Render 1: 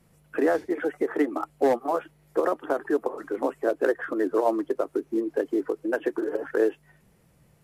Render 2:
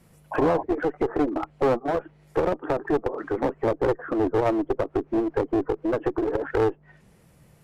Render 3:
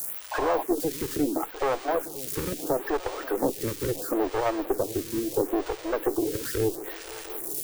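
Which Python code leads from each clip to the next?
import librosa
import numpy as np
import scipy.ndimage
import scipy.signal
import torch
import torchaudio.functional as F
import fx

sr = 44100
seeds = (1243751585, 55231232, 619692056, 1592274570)

y1 = fx.env_lowpass_down(x, sr, base_hz=740.0, full_db=-23.0)
y1 = fx.clip_asym(y1, sr, top_db=-29.5, bottom_db=-17.0)
y1 = fx.spec_paint(y1, sr, seeds[0], shape='noise', start_s=0.31, length_s=0.32, low_hz=540.0, high_hz=1100.0, level_db=-36.0)
y1 = F.gain(torch.from_numpy(y1), 5.0).numpy()
y2 = y1 + 0.5 * 10.0 ** (-21.0 / 20.0) * np.diff(np.sign(y1), prepend=np.sign(y1[:1]))
y2 = fx.echo_swing(y2, sr, ms=702, ratio=3, feedback_pct=60, wet_db=-17.0)
y2 = fx.stagger_phaser(y2, sr, hz=0.74)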